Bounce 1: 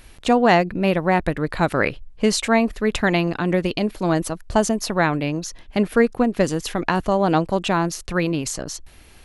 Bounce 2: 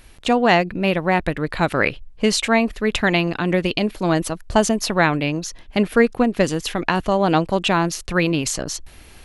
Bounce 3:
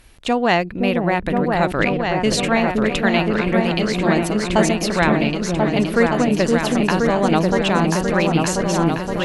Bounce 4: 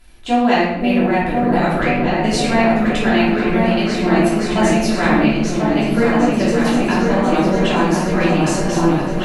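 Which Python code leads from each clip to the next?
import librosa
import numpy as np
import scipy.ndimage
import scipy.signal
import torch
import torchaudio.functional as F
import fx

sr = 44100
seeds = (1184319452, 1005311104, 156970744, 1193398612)

y1 = fx.dynamic_eq(x, sr, hz=2900.0, q=1.1, threshold_db=-39.0, ratio=4.0, max_db=5)
y1 = fx.rider(y1, sr, range_db=4, speed_s=2.0)
y2 = fx.echo_opening(y1, sr, ms=519, hz=400, octaves=2, feedback_pct=70, wet_db=0)
y2 = fx.cheby_harmonics(y2, sr, harmonics=(3,), levels_db=(-32,), full_scale_db=-0.5)
y2 = F.gain(torch.from_numpy(y2), -1.0).numpy()
y3 = fx.quant_float(y2, sr, bits=6)
y3 = fx.room_shoebox(y3, sr, seeds[0], volume_m3=240.0, walls='mixed', distance_m=3.0)
y3 = F.gain(torch.from_numpy(y3), -8.5).numpy()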